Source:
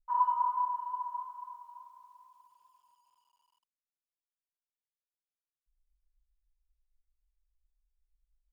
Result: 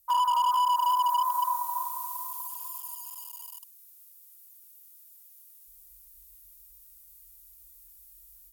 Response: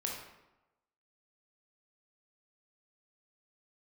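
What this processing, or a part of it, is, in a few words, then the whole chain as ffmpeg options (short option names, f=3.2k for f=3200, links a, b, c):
FM broadcast chain: -filter_complex "[0:a]highpass=51,dynaudnorm=f=110:g=3:m=10.5dB,acrossover=split=540|1200[a][b][c];[a]acompressor=threshold=-52dB:ratio=4[d];[b]acompressor=threshold=-28dB:ratio=4[e];[c]acompressor=threshold=-40dB:ratio=4[f];[d][e][f]amix=inputs=3:normalize=0,aemphasis=mode=production:type=50fm,alimiter=level_in=1dB:limit=-24dB:level=0:latency=1:release=26,volume=-1dB,asoftclip=type=hard:threshold=-28.5dB,lowpass=f=15k:w=0.5412,lowpass=f=15k:w=1.3066,aemphasis=mode=production:type=50fm,volume=7.5dB"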